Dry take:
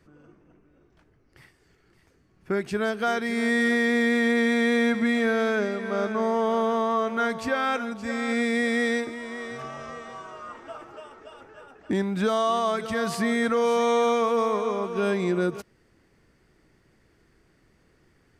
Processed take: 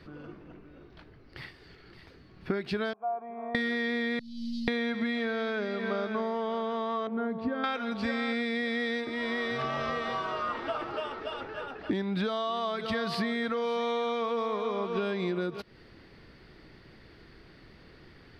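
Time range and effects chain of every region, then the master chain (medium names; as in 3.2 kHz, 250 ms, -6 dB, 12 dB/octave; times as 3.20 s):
2.93–3.55 s: cascade formant filter a + distance through air 310 m
4.19–4.68 s: median filter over 41 samples + elliptic band-stop 150–4900 Hz, stop band 60 dB + distance through air 81 m
7.07–7.64 s: band-pass filter 200 Hz, Q 0.63 + comb 4.4 ms, depth 39%
whole clip: resonant high shelf 5.5 kHz -9.5 dB, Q 3; compression 12:1, threshold -36 dBFS; trim +8.5 dB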